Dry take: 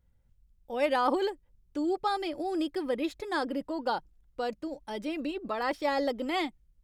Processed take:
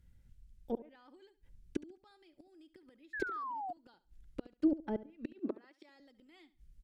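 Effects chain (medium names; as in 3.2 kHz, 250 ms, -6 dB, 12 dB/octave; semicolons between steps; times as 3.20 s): inverted gate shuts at -27 dBFS, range -34 dB; 5.26–6.00 s: high-pass 270 Hz 24 dB/octave; low-pass that closes with the level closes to 700 Hz, closed at -37 dBFS; high-order bell 740 Hz -8.5 dB; feedback delay 70 ms, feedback 27%, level -16.5 dB; dynamic bell 370 Hz, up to +5 dB, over -55 dBFS, Q 0.89; 3.13–3.73 s: painted sound fall 690–1800 Hz -45 dBFS; trim +5 dB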